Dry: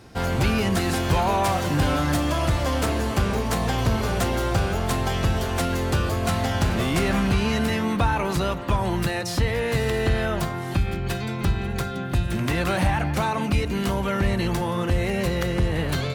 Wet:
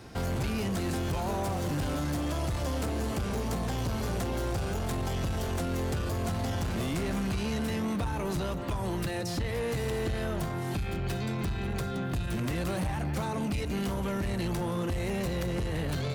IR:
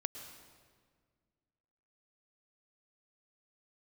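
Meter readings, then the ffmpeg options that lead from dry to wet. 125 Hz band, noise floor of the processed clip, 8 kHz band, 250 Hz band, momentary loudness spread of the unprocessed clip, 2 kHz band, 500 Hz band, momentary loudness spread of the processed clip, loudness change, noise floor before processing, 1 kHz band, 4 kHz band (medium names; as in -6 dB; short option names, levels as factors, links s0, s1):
-7.5 dB, -33 dBFS, -7.5 dB, -7.0 dB, 4 LU, -11.0 dB, -7.5 dB, 2 LU, -8.0 dB, -29 dBFS, -10.5 dB, -9.5 dB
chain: -filter_complex "[0:a]acrossover=split=590|4800[s0][s1][s2];[s0]acompressor=threshold=0.0562:ratio=4[s3];[s1]acompressor=threshold=0.0126:ratio=4[s4];[s2]acompressor=threshold=0.00891:ratio=4[s5];[s3][s4][s5]amix=inputs=3:normalize=0,asoftclip=type=tanh:threshold=0.0501"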